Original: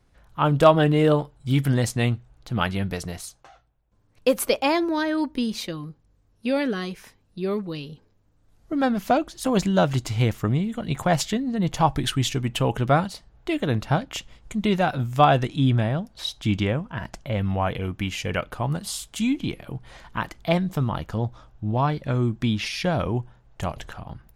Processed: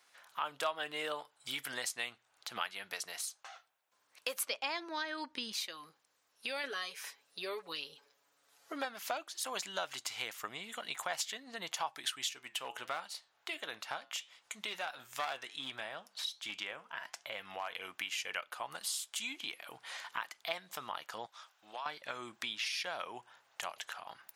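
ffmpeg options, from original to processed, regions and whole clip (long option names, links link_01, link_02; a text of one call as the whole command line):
ffmpeg -i in.wav -filter_complex "[0:a]asettb=1/sr,asplit=3[link_01][link_02][link_03];[link_01]atrim=end=4.434[link_04];[link_02]atrim=start=4.43:end=5.53,asetpts=PTS-STARTPTS,afade=type=in:duration=0.004:curve=qsin,afade=type=out:start_time=1.096:duration=0.004:curve=qsin,lowpass=6400,bass=frequency=250:gain=14,treble=frequency=4000:gain=1[link_05];[link_03]atrim=start=5.526[link_06];[link_04][link_05]acrossfade=duration=0.004:curve1=hsin:curve2=qsin[link_07];[link_07][link_06]acrossfade=duration=0.004:curve1=qsin:curve2=hsin,asettb=1/sr,asplit=3[link_08][link_09][link_10];[link_08]atrim=end=6.634[link_11];[link_09]atrim=start=6.63:end=8.85,asetpts=PTS-STARTPTS,afade=type=in:duration=0.004:curve=qsin,afade=type=out:start_time=2.216:duration=0.004:curve=qsin,equalizer=frequency=480:width_type=o:width=0.52:gain=5,aecho=1:1:7.1:0.66,atrim=end_sample=97902[link_12];[link_10]atrim=start=8.846[link_13];[link_11][link_12]acrossfade=duration=0.004:curve1=hsin:curve2=qsin[link_14];[link_14][link_13]acrossfade=duration=0.004:curve1=qsin:curve2=hsin,asettb=1/sr,asplit=3[link_15][link_16][link_17];[link_15]atrim=end=12.314[link_18];[link_16]atrim=start=12.31:end=17.74,asetpts=PTS-STARTPTS,afade=type=in:duration=0.004:curve=qsin,afade=type=out:start_time=5.426:duration=0.004:curve=qsin,flanger=delay=6:depth=2:regen=-84:speed=1.4:shape=sinusoidal,aeval=exprs='clip(val(0),-1,0.0841)':channel_layout=same[link_19];[link_17]atrim=start=17.736[link_20];[link_18][link_19]acrossfade=duration=0.004:curve1=hsin:curve2=qsin[link_21];[link_21][link_20]acrossfade=duration=0.004:curve1=qsin:curve2=hsin,asettb=1/sr,asplit=3[link_22][link_23][link_24];[link_22]atrim=end=21.264[link_25];[link_23]atrim=start=21.26:end=21.86,asetpts=PTS-STARTPTS,afade=type=in:duration=0.004:curve=qsin,afade=type=out:start_time=0.596:duration=0.004:curve=qsin,highpass=frequency=1400:poles=1,acompressor=threshold=-33dB:ratio=3:attack=3.2:release=140:knee=1:detection=peak[link_26];[link_24]atrim=start=21.856[link_27];[link_25][link_26]acrossfade=duration=0.004:curve1=hsin:curve2=qsin[link_28];[link_28][link_27]acrossfade=duration=0.004:curve1=qsin:curve2=hsin,highpass=860,tiltshelf=frequency=1300:gain=-3.5,acompressor=threshold=-46dB:ratio=2.5,volume=4dB" out.wav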